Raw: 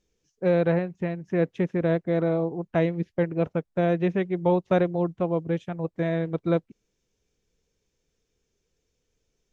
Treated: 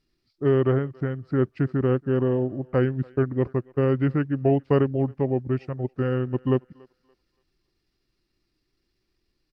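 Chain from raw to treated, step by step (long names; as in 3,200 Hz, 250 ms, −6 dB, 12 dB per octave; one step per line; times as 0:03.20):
feedback echo with a high-pass in the loop 281 ms, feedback 35%, high-pass 640 Hz, level −23.5 dB
pitch shifter −4.5 semitones
level +1.5 dB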